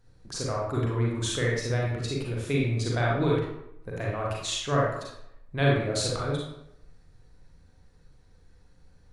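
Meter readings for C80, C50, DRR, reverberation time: 4.5 dB, 0.0 dB, -4.0 dB, 0.80 s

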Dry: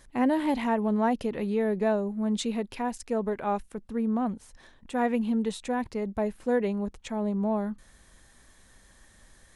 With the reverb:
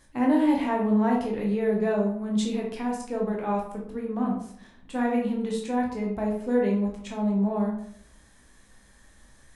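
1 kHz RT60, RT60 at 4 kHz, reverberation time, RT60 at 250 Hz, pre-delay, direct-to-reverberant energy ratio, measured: 0.60 s, 0.40 s, 0.65 s, 0.75 s, 12 ms, -1.5 dB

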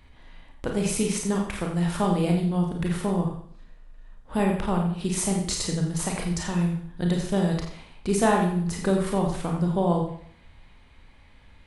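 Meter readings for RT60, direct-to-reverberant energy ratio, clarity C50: 0.60 s, 0.5 dB, 4.0 dB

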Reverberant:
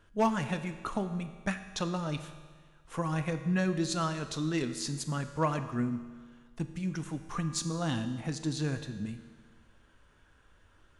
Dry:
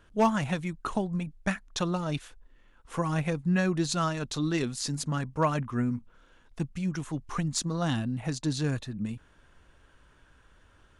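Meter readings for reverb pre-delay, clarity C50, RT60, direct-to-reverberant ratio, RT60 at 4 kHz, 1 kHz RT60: 9 ms, 10.5 dB, 1.6 s, 8.5 dB, 1.6 s, 1.6 s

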